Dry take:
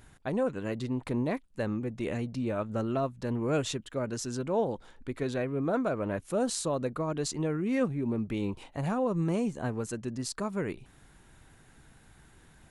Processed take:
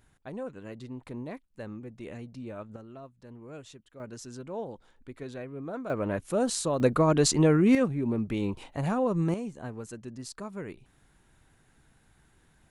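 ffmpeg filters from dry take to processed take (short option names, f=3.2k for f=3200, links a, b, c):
-af "asetnsamples=n=441:p=0,asendcmd='2.76 volume volume -16dB;4 volume volume -8dB;5.9 volume volume 2dB;6.8 volume volume 9.5dB;7.75 volume volume 2dB;9.34 volume volume -6dB',volume=-8.5dB"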